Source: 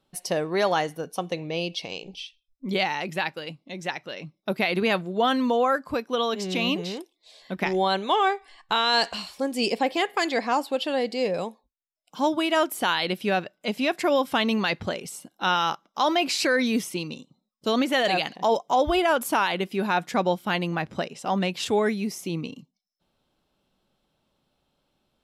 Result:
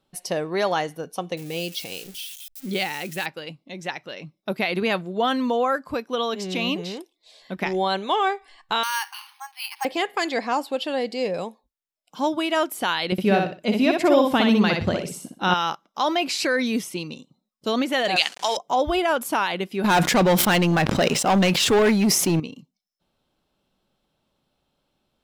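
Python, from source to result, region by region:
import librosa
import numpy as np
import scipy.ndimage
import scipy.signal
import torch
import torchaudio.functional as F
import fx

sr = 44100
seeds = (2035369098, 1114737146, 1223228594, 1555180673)

y = fx.chain(x, sr, fx.crossing_spikes(level_db=-29.5),
    fx.peak_eq(hz=1000.0, db=-7.0, octaves=0.61),
    fx.notch(hz=630.0, q=9.7), at=(1.37, 3.26))
y = fx.chain(y, sr, fx.halfwave_gain(db=-3.0),
    fx.brickwall_bandpass(low_hz=770.0, high_hz=8900.0),
    fx.resample_bad(factor=6, down='filtered', up='hold'), at=(8.83, 9.85))
y = fx.chain(y, sr, fx.low_shelf(hz=450.0, db=9.0),
    fx.echo_feedback(ms=61, feedback_pct=25, wet_db=-4), at=(13.12, 15.54))
y = fx.chain(y, sr, fx.delta_hold(step_db=-40.0),
    fx.weighting(curve='ITU-R 468'), at=(18.16, 18.57))
y = fx.chain(y, sr, fx.leveller(passes=3),
    fx.sustainer(db_per_s=34.0), at=(19.84, 22.4))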